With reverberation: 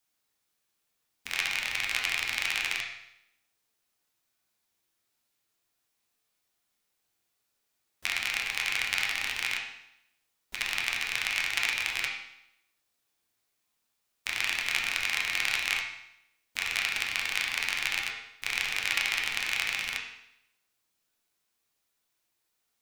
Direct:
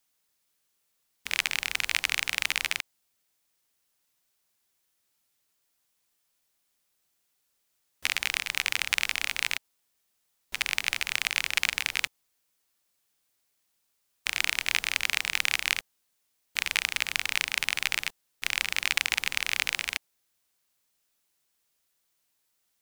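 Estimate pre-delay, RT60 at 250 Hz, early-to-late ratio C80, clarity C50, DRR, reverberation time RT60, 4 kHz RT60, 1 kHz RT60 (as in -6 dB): 9 ms, 0.80 s, 7.0 dB, 4.5 dB, -1.5 dB, 0.80 s, 0.75 s, 0.80 s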